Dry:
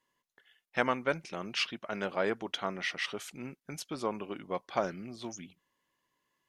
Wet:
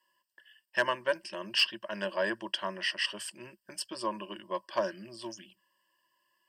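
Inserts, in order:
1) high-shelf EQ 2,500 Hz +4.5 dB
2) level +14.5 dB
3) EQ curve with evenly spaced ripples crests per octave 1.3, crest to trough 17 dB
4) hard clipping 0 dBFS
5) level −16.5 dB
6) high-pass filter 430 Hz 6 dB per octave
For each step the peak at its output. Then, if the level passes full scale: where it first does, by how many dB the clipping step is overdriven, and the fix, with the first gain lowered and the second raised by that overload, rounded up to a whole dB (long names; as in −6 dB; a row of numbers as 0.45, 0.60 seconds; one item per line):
−10.0, +4.5, +4.0, 0.0, −16.5, −14.0 dBFS
step 2, 4.0 dB
step 2 +10.5 dB, step 5 −12.5 dB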